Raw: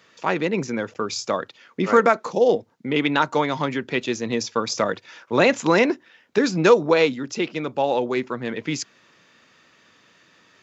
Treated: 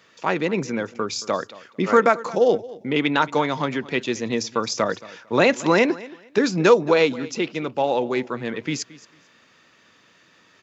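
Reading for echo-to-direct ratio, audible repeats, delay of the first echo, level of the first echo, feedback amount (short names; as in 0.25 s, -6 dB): -19.5 dB, 2, 0.224 s, -19.5 dB, 21%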